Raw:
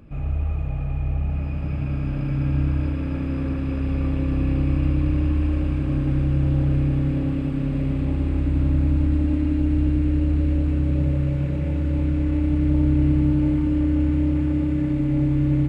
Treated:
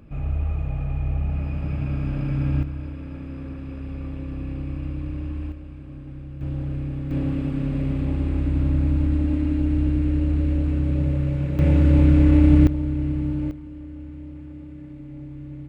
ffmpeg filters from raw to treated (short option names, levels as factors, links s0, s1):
-af "asetnsamples=n=441:p=0,asendcmd='2.63 volume volume -9dB;5.52 volume volume -16dB;6.41 volume volume -8dB;7.11 volume volume -1dB;11.59 volume volume 7dB;12.67 volume volume -6dB;13.51 volume volume -17dB',volume=0.944"